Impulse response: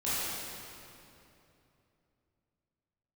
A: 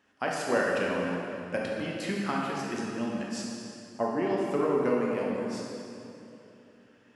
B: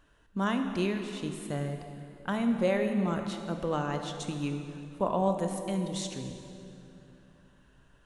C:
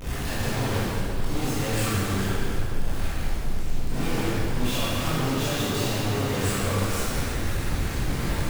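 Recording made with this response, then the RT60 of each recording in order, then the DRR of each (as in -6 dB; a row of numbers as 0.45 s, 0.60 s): C; 2.9 s, 2.9 s, 2.9 s; -3.0 dB, 5.0 dB, -12.5 dB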